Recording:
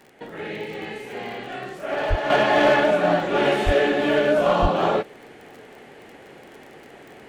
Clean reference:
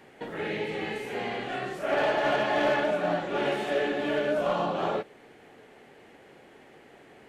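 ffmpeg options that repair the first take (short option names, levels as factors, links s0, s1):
-filter_complex "[0:a]adeclick=t=4,asplit=3[s0][s1][s2];[s0]afade=t=out:st=2.09:d=0.02[s3];[s1]highpass=f=140:w=0.5412,highpass=f=140:w=1.3066,afade=t=in:st=2.09:d=0.02,afade=t=out:st=2.21:d=0.02[s4];[s2]afade=t=in:st=2.21:d=0.02[s5];[s3][s4][s5]amix=inputs=3:normalize=0,asplit=3[s6][s7][s8];[s6]afade=t=out:st=3.65:d=0.02[s9];[s7]highpass=f=140:w=0.5412,highpass=f=140:w=1.3066,afade=t=in:st=3.65:d=0.02,afade=t=out:st=3.77:d=0.02[s10];[s8]afade=t=in:st=3.77:d=0.02[s11];[s9][s10][s11]amix=inputs=3:normalize=0,asplit=3[s12][s13][s14];[s12]afade=t=out:st=4.61:d=0.02[s15];[s13]highpass=f=140:w=0.5412,highpass=f=140:w=1.3066,afade=t=in:st=4.61:d=0.02,afade=t=out:st=4.73:d=0.02[s16];[s14]afade=t=in:st=4.73:d=0.02[s17];[s15][s16][s17]amix=inputs=3:normalize=0,asetnsamples=n=441:p=0,asendcmd='2.3 volume volume -8dB',volume=1"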